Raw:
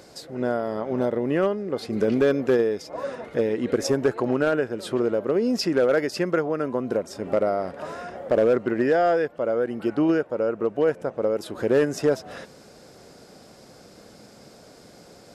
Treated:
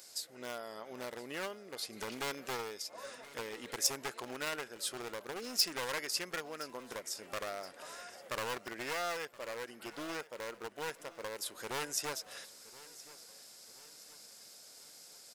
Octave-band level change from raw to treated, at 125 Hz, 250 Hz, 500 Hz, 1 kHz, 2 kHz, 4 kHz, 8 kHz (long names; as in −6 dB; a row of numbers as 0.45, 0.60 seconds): −22.0, −24.0, −21.5, −11.5, −8.5, −0.5, +3.0 decibels